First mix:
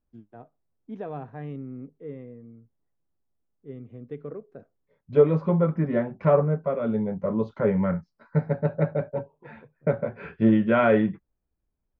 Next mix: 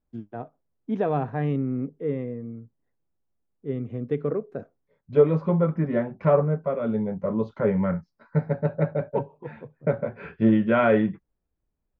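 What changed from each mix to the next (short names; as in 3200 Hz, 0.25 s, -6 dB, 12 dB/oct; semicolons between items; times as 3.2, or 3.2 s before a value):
first voice +10.5 dB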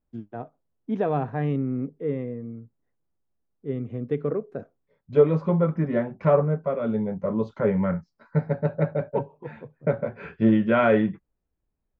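second voice: remove air absorption 76 m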